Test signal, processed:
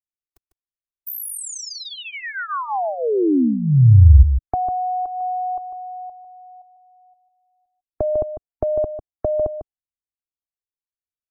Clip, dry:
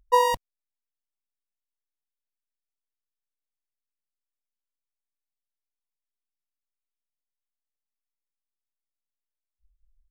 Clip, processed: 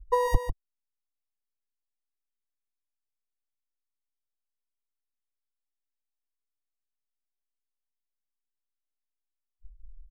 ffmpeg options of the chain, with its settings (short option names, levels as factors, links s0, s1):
-filter_complex "[0:a]aecho=1:1:2.7:0.83,acompressor=threshold=0.1:ratio=12,afftdn=nr=20:nf=-44,bass=f=250:g=13,treble=f=4000:g=-8,acrossover=split=250|3000[s0][s1][s2];[s1]acompressor=threshold=0.141:ratio=5[s3];[s0][s3][s2]amix=inputs=3:normalize=0,equalizer=f=2700:t=o:w=1.9:g=-12,asplit=2[s4][s5];[s5]aecho=0:1:149:0.355[s6];[s4][s6]amix=inputs=2:normalize=0,volume=1.33"